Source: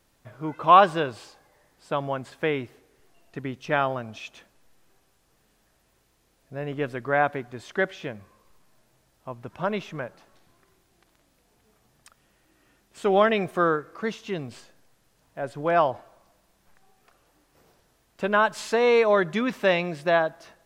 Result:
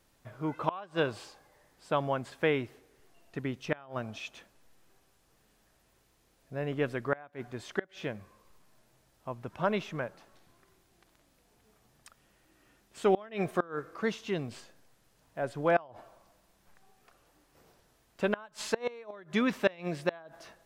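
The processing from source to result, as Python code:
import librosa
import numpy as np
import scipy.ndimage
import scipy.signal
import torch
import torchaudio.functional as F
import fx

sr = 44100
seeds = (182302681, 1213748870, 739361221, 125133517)

y = fx.gate_flip(x, sr, shuts_db=-12.0, range_db=-26)
y = F.gain(torch.from_numpy(y), -2.0).numpy()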